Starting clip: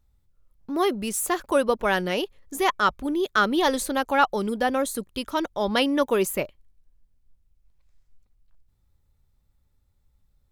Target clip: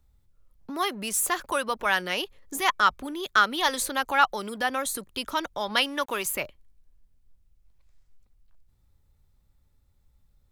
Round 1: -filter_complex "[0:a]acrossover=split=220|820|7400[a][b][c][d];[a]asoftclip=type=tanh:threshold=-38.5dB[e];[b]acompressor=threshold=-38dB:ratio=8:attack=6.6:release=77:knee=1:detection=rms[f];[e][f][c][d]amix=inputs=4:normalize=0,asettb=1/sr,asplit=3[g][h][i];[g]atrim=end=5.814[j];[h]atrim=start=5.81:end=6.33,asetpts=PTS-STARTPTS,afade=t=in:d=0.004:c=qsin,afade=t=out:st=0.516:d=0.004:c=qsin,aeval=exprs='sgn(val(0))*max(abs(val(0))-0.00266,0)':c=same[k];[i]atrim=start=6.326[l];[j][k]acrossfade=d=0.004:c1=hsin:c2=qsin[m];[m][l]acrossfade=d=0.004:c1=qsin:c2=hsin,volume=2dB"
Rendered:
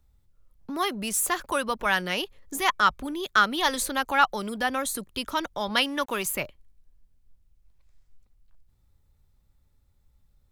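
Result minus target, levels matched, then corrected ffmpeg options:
soft clip: distortion -6 dB
-filter_complex "[0:a]acrossover=split=220|820|7400[a][b][c][d];[a]asoftclip=type=tanh:threshold=-48dB[e];[b]acompressor=threshold=-38dB:ratio=8:attack=6.6:release=77:knee=1:detection=rms[f];[e][f][c][d]amix=inputs=4:normalize=0,asettb=1/sr,asplit=3[g][h][i];[g]atrim=end=5.814[j];[h]atrim=start=5.81:end=6.33,asetpts=PTS-STARTPTS,afade=t=in:d=0.004:c=qsin,afade=t=out:st=0.516:d=0.004:c=qsin,aeval=exprs='sgn(val(0))*max(abs(val(0))-0.00266,0)':c=same[k];[i]atrim=start=6.326[l];[j][k]acrossfade=d=0.004:c1=hsin:c2=qsin[m];[m][l]acrossfade=d=0.004:c1=qsin:c2=hsin,volume=2dB"

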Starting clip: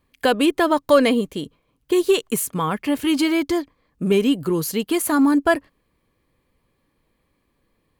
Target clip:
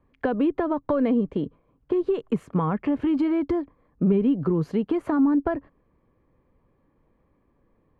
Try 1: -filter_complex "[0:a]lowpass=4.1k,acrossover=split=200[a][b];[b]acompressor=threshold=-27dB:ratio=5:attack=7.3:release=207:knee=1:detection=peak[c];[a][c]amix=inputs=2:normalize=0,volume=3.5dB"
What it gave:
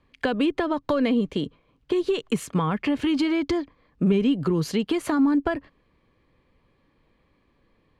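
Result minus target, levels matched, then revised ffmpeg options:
4000 Hz band +15.0 dB
-filter_complex "[0:a]lowpass=1.2k,acrossover=split=200[a][b];[b]acompressor=threshold=-27dB:ratio=5:attack=7.3:release=207:knee=1:detection=peak[c];[a][c]amix=inputs=2:normalize=0,volume=3.5dB"

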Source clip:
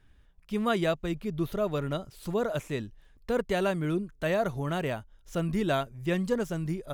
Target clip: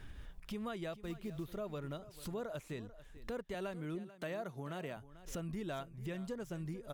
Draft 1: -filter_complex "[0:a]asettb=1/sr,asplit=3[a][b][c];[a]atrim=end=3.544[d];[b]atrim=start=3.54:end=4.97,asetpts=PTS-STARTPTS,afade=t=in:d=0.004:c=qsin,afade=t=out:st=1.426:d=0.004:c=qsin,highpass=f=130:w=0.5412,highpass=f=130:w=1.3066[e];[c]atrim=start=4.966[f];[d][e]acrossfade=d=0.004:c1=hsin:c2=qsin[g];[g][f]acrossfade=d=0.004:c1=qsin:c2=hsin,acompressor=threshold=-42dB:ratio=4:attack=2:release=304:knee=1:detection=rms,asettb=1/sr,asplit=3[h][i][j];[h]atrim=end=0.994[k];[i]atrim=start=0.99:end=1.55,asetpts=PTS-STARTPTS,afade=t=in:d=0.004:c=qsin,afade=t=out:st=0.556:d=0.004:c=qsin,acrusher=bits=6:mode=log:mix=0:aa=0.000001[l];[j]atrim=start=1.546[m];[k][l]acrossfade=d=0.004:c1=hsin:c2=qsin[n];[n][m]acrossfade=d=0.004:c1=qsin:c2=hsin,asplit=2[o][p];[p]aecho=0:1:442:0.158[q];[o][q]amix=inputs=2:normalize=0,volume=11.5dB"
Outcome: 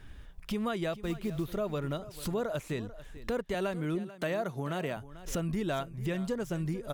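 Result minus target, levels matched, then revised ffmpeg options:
compressor: peak gain reduction -9 dB
-filter_complex "[0:a]asettb=1/sr,asplit=3[a][b][c];[a]atrim=end=3.544[d];[b]atrim=start=3.54:end=4.97,asetpts=PTS-STARTPTS,afade=t=in:d=0.004:c=qsin,afade=t=out:st=1.426:d=0.004:c=qsin,highpass=f=130:w=0.5412,highpass=f=130:w=1.3066[e];[c]atrim=start=4.966[f];[d][e]acrossfade=d=0.004:c1=hsin:c2=qsin[g];[g][f]acrossfade=d=0.004:c1=qsin:c2=hsin,acompressor=threshold=-54dB:ratio=4:attack=2:release=304:knee=1:detection=rms,asettb=1/sr,asplit=3[h][i][j];[h]atrim=end=0.994[k];[i]atrim=start=0.99:end=1.55,asetpts=PTS-STARTPTS,afade=t=in:d=0.004:c=qsin,afade=t=out:st=0.556:d=0.004:c=qsin,acrusher=bits=6:mode=log:mix=0:aa=0.000001[l];[j]atrim=start=1.546[m];[k][l]acrossfade=d=0.004:c1=hsin:c2=qsin[n];[n][m]acrossfade=d=0.004:c1=qsin:c2=hsin,asplit=2[o][p];[p]aecho=0:1:442:0.158[q];[o][q]amix=inputs=2:normalize=0,volume=11.5dB"

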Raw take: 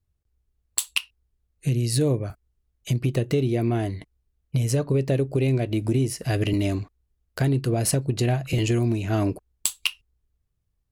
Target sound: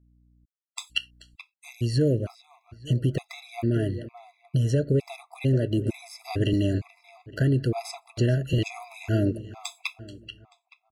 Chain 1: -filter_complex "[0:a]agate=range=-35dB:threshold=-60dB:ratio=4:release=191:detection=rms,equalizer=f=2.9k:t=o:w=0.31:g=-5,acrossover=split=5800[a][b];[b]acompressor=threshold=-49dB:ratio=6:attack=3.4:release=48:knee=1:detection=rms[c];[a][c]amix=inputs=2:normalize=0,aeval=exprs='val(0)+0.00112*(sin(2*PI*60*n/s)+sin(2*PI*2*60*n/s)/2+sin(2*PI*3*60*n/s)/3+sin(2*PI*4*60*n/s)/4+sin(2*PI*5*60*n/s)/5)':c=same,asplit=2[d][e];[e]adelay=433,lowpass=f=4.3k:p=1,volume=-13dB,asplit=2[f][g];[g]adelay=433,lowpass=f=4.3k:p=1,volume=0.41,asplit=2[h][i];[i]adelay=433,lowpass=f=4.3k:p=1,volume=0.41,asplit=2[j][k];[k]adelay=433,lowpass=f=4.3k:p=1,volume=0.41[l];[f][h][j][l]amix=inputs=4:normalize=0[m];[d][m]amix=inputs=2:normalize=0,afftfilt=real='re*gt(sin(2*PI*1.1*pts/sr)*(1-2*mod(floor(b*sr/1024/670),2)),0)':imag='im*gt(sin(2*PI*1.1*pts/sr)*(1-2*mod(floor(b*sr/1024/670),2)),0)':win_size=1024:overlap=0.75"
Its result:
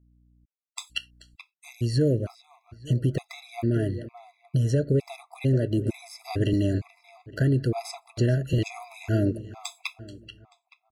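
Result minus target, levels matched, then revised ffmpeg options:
4000 Hz band -3.0 dB
-filter_complex "[0:a]agate=range=-35dB:threshold=-60dB:ratio=4:release=191:detection=rms,acrossover=split=5800[a][b];[b]acompressor=threshold=-49dB:ratio=6:attack=3.4:release=48:knee=1:detection=rms[c];[a][c]amix=inputs=2:normalize=0,aeval=exprs='val(0)+0.00112*(sin(2*PI*60*n/s)+sin(2*PI*2*60*n/s)/2+sin(2*PI*3*60*n/s)/3+sin(2*PI*4*60*n/s)/4+sin(2*PI*5*60*n/s)/5)':c=same,asplit=2[d][e];[e]adelay=433,lowpass=f=4.3k:p=1,volume=-13dB,asplit=2[f][g];[g]adelay=433,lowpass=f=4.3k:p=1,volume=0.41,asplit=2[h][i];[i]adelay=433,lowpass=f=4.3k:p=1,volume=0.41,asplit=2[j][k];[k]adelay=433,lowpass=f=4.3k:p=1,volume=0.41[l];[f][h][j][l]amix=inputs=4:normalize=0[m];[d][m]amix=inputs=2:normalize=0,afftfilt=real='re*gt(sin(2*PI*1.1*pts/sr)*(1-2*mod(floor(b*sr/1024/670),2)),0)':imag='im*gt(sin(2*PI*1.1*pts/sr)*(1-2*mod(floor(b*sr/1024/670),2)),0)':win_size=1024:overlap=0.75"

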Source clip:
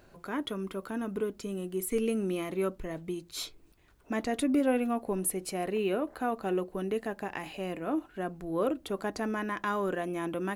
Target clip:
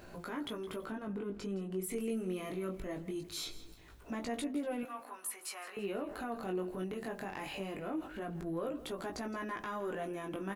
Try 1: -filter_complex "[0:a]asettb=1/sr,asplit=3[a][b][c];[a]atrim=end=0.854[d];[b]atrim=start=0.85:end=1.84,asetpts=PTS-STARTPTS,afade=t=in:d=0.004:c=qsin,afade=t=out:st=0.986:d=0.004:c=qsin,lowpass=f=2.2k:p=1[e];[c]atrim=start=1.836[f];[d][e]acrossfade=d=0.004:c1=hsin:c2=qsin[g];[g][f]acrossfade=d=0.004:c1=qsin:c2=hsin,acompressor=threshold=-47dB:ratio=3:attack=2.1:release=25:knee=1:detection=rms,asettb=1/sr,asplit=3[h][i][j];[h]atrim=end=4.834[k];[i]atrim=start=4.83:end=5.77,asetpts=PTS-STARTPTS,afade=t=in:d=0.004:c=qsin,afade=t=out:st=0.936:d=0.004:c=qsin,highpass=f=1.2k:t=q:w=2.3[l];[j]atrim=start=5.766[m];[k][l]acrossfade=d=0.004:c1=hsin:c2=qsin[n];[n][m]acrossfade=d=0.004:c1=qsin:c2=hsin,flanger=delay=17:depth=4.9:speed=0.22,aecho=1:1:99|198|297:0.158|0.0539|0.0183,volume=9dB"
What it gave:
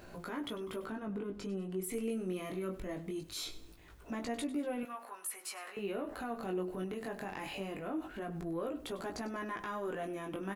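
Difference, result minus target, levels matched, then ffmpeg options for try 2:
echo 66 ms early
-filter_complex "[0:a]asettb=1/sr,asplit=3[a][b][c];[a]atrim=end=0.854[d];[b]atrim=start=0.85:end=1.84,asetpts=PTS-STARTPTS,afade=t=in:d=0.004:c=qsin,afade=t=out:st=0.986:d=0.004:c=qsin,lowpass=f=2.2k:p=1[e];[c]atrim=start=1.836[f];[d][e]acrossfade=d=0.004:c1=hsin:c2=qsin[g];[g][f]acrossfade=d=0.004:c1=qsin:c2=hsin,acompressor=threshold=-47dB:ratio=3:attack=2.1:release=25:knee=1:detection=rms,asettb=1/sr,asplit=3[h][i][j];[h]atrim=end=4.834[k];[i]atrim=start=4.83:end=5.77,asetpts=PTS-STARTPTS,afade=t=in:d=0.004:c=qsin,afade=t=out:st=0.936:d=0.004:c=qsin,highpass=f=1.2k:t=q:w=2.3[l];[j]atrim=start=5.766[m];[k][l]acrossfade=d=0.004:c1=hsin:c2=qsin[n];[n][m]acrossfade=d=0.004:c1=qsin:c2=hsin,flanger=delay=17:depth=4.9:speed=0.22,aecho=1:1:165|330|495:0.158|0.0539|0.0183,volume=9dB"

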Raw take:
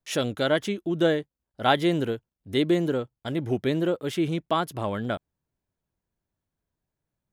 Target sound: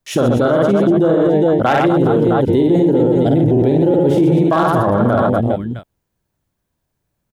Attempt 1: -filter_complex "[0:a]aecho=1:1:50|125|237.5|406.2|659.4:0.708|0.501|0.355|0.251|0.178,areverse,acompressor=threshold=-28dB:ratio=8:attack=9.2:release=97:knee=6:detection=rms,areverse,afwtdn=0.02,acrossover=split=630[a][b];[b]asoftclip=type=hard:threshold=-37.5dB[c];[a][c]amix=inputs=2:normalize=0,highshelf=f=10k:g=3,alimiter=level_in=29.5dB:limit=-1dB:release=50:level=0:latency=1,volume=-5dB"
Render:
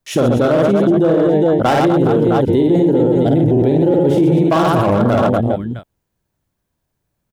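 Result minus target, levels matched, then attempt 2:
hard clip: distortion +12 dB
-filter_complex "[0:a]aecho=1:1:50|125|237.5|406.2|659.4:0.708|0.501|0.355|0.251|0.178,areverse,acompressor=threshold=-28dB:ratio=8:attack=9.2:release=97:knee=6:detection=rms,areverse,afwtdn=0.02,acrossover=split=630[a][b];[b]asoftclip=type=hard:threshold=-29.5dB[c];[a][c]amix=inputs=2:normalize=0,highshelf=f=10k:g=3,alimiter=level_in=29.5dB:limit=-1dB:release=50:level=0:latency=1,volume=-5dB"

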